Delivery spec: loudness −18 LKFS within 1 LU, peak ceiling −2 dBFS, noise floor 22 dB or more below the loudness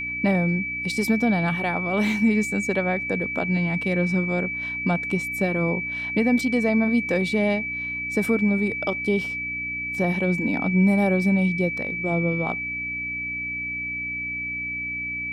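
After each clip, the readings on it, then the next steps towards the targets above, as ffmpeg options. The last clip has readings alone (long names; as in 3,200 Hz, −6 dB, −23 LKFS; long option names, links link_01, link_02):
mains hum 60 Hz; hum harmonics up to 300 Hz; level of the hum −42 dBFS; interfering tone 2,300 Hz; level of the tone −27 dBFS; integrated loudness −23.5 LKFS; sample peak −10.5 dBFS; target loudness −18.0 LKFS
→ -af "bandreject=frequency=60:width_type=h:width=4,bandreject=frequency=120:width_type=h:width=4,bandreject=frequency=180:width_type=h:width=4,bandreject=frequency=240:width_type=h:width=4,bandreject=frequency=300:width_type=h:width=4"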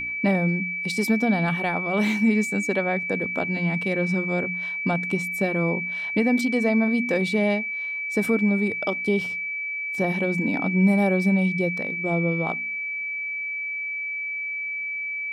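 mains hum none found; interfering tone 2,300 Hz; level of the tone −27 dBFS
→ -af "bandreject=frequency=2300:width=30"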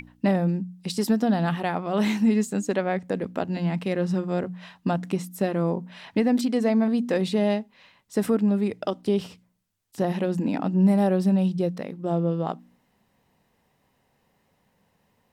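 interfering tone none found; integrated loudness −25.0 LKFS; sample peak −11.0 dBFS; target loudness −18.0 LKFS
→ -af "volume=7dB"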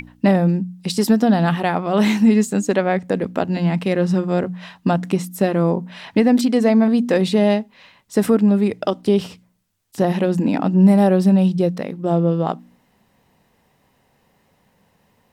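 integrated loudness −18.0 LKFS; sample peak −4.0 dBFS; background noise floor −62 dBFS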